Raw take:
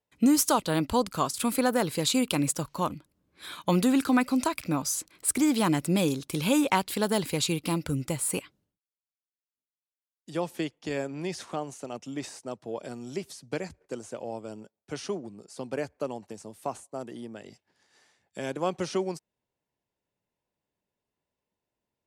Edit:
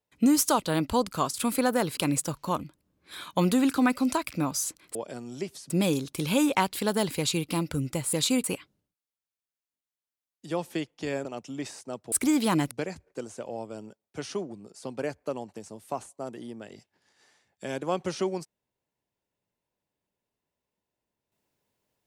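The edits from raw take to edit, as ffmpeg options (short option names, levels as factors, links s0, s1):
-filter_complex "[0:a]asplit=9[s0][s1][s2][s3][s4][s5][s6][s7][s8];[s0]atrim=end=1.972[s9];[s1]atrim=start=2.278:end=5.262[s10];[s2]atrim=start=12.698:end=13.452[s11];[s3]atrim=start=5.848:end=8.282[s12];[s4]atrim=start=1.968:end=2.282[s13];[s5]atrim=start=8.278:end=11.092[s14];[s6]atrim=start=11.828:end=12.702[s15];[s7]atrim=start=5.258:end=5.852[s16];[s8]atrim=start=13.448[s17];[s9][s10]acrossfade=d=0.004:c1=hsin:c2=hsin[s18];[s18][s11]acrossfade=d=0.004:c1=hsin:c2=hsin[s19];[s19][s12]acrossfade=d=0.004:c1=hsin:c2=hsin[s20];[s20][s13]acrossfade=d=0.004:c1=hsin:c2=hsin[s21];[s21][s14]acrossfade=d=0.004:c1=hsin:c2=hsin[s22];[s22][s15]acrossfade=d=0.004:c1=hsin:c2=hsin[s23];[s23][s16]acrossfade=d=0.004:c1=hsin:c2=hsin[s24];[s24][s17]acrossfade=d=0.004:c1=hsin:c2=hsin"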